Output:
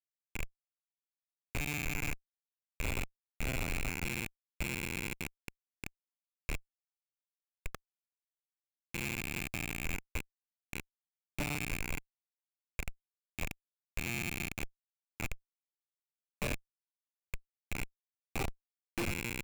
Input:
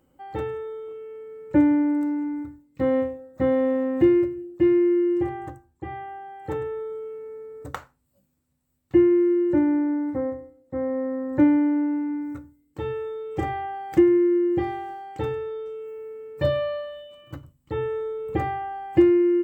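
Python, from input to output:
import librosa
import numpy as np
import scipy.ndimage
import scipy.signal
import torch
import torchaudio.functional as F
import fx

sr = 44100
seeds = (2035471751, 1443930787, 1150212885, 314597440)

y = fx.rattle_buzz(x, sr, strikes_db=-31.0, level_db=-11.0)
y = fx.filter_lfo_highpass(y, sr, shape='saw_down', hz=0.15, low_hz=790.0, high_hz=1600.0, q=0.82)
y = fx.schmitt(y, sr, flips_db=-25.5)
y = F.gain(torch.from_numpy(y), -2.0).numpy()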